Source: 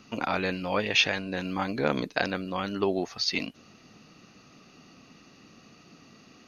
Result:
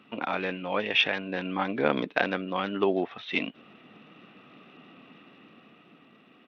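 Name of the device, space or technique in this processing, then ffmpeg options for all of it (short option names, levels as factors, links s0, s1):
Bluetooth headset: -af "highpass=190,dynaudnorm=f=260:g=9:m=1.78,aresample=8000,aresample=44100,volume=0.841" -ar 32000 -c:a sbc -b:a 64k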